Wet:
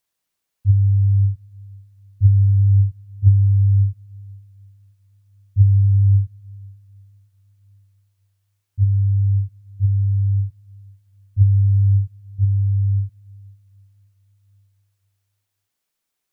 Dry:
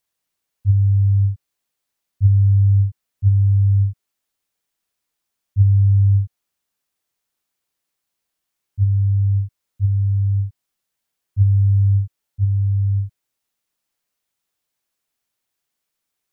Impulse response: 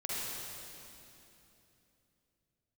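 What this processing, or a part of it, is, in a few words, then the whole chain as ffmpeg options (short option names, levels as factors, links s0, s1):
keyed gated reverb: -filter_complex "[0:a]asplit=3[s0][s1][s2];[1:a]atrim=start_sample=2205[s3];[s1][s3]afir=irnorm=-1:irlink=0[s4];[s2]apad=whole_len=720072[s5];[s4][s5]sidechaingate=range=0.158:threshold=0.224:ratio=16:detection=peak,volume=0.316[s6];[s0][s6]amix=inputs=2:normalize=0"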